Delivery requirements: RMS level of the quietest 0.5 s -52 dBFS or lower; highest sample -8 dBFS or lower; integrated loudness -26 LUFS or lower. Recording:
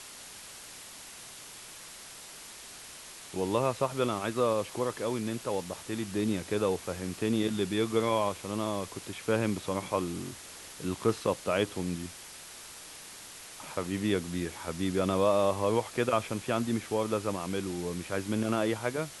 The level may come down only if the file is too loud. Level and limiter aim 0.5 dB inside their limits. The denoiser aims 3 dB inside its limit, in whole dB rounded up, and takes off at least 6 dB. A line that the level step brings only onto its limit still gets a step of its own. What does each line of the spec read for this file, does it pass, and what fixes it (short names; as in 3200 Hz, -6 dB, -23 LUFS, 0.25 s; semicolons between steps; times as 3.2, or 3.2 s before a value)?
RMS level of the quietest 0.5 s -47 dBFS: fail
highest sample -13.5 dBFS: OK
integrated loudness -31.0 LUFS: OK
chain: denoiser 8 dB, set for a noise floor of -47 dBFS